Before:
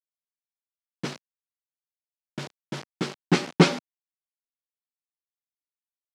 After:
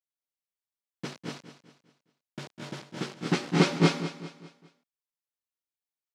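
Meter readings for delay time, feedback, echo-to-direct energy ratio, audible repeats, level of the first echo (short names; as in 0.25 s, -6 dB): 0.201 s, no steady repeat, 0.5 dB, 7, -12.5 dB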